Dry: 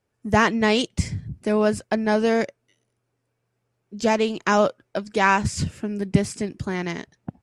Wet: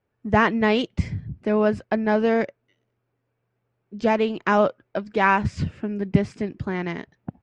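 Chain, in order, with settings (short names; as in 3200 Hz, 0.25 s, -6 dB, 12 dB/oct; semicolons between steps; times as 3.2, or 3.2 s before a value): LPF 2800 Hz 12 dB/oct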